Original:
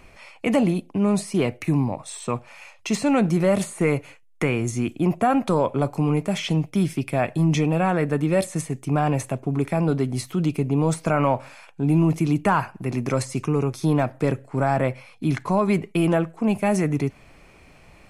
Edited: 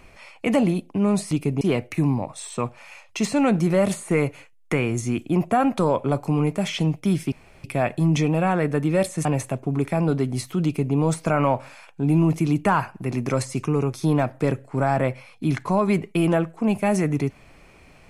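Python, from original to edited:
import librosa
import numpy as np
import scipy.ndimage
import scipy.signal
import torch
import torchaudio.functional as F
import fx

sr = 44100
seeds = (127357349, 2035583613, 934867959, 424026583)

y = fx.edit(x, sr, fx.insert_room_tone(at_s=7.02, length_s=0.32),
    fx.cut(start_s=8.63, length_s=0.42),
    fx.duplicate(start_s=10.44, length_s=0.3, to_s=1.31), tone=tone)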